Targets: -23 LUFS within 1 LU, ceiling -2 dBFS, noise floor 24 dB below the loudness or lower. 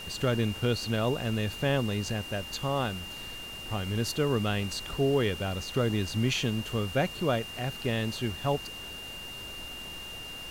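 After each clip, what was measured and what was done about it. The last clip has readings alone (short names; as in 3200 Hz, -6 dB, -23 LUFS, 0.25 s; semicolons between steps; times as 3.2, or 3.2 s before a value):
steady tone 2800 Hz; tone level -40 dBFS; noise floor -41 dBFS; noise floor target -55 dBFS; loudness -30.5 LUFS; peak -15.5 dBFS; loudness target -23.0 LUFS
-> notch 2800 Hz, Q 30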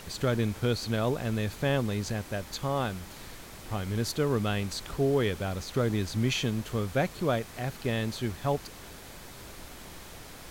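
steady tone none; noise floor -46 dBFS; noise floor target -55 dBFS
-> noise print and reduce 9 dB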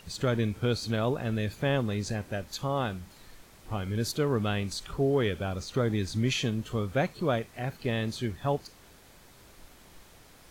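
noise floor -55 dBFS; loudness -30.5 LUFS; peak -16.0 dBFS; loudness target -23.0 LUFS
-> gain +7.5 dB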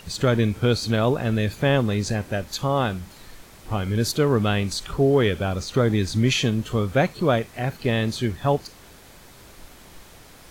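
loudness -23.0 LUFS; peak -8.5 dBFS; noise floor -48 dBFS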